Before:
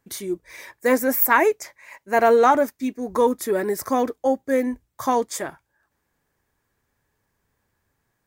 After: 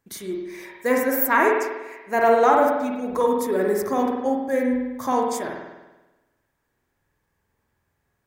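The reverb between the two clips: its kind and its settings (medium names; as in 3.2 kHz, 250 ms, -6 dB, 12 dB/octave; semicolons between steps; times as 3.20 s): spring tank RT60 1.1 s, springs 48 ms, chirp 75 ms, DRR -0.5 dB; trim -3.5 dB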